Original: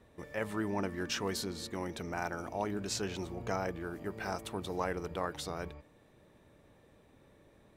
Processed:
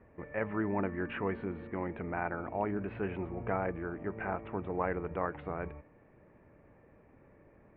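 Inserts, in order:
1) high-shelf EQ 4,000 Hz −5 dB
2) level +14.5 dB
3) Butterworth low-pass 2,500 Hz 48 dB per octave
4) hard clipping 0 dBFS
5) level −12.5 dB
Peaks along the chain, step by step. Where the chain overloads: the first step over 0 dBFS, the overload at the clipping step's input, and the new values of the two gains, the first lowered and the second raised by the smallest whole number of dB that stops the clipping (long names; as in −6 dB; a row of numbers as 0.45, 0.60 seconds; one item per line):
−19.5, −5.0, −5.0, −5.0, −17.5 dBFS
no step passes full scale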